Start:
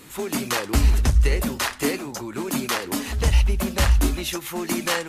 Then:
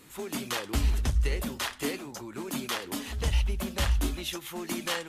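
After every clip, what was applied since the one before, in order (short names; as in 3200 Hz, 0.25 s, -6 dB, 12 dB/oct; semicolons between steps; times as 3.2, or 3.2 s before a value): dynamic EQ 3300 Hz, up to +6 dB, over -46 dBFS, Q 3.8; gain -8.5 dB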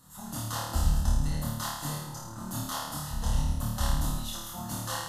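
octaver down 1 oct, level 0 dB; fixed phaser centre 970 Hz, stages 4; flutter echo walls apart 4.6 m, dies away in 0.93 s; gain -2.5 dB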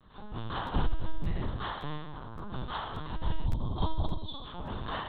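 spectral gain 3.46–4.45, 1200–3100 Hz -17 dB; LPC vocoder at 8 kHz pitch kept; crackling interface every 0.57 s, samples 512, repeat, from 0.66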